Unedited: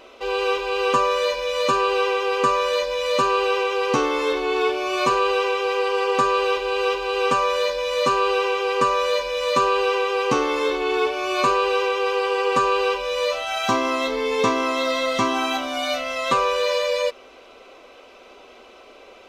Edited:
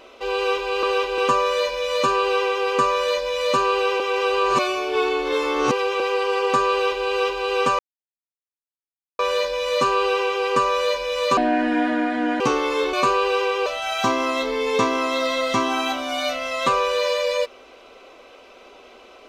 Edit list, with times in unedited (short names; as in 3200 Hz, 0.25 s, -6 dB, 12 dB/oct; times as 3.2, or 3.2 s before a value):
3.65–5.65 reverse
6.36–6.71 copy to 0.83
7.44 insert silence 1.40 s
9.62–10.26 speed 62%
10.79–11.34 cut
12.07–13.31 cut